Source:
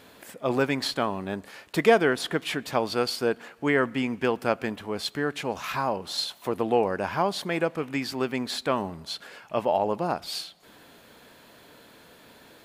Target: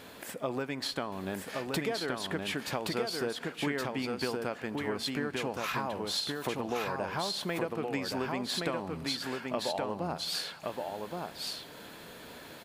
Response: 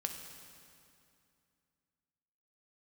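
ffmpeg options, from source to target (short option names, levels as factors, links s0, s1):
-filter_complex "[0:a]acompressor=threshold=0.0224:ratio=12,aecho=1:1:1121:0.708,asplit=2[s0][s1];[1:a]atrim=start_sample=2205[s2];[s1][s2]afir=irnorm=-1:irlink=0,volume=0.15[s3];[s0][s3]amix=inputs=2:normalize=0,volume=1.19"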